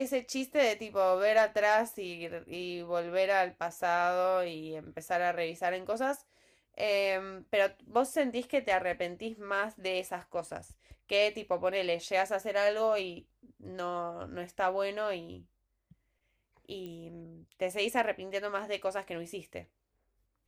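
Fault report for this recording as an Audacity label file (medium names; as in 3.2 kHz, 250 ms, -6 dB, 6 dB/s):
16.860000	16.860000	pop -31 dBFS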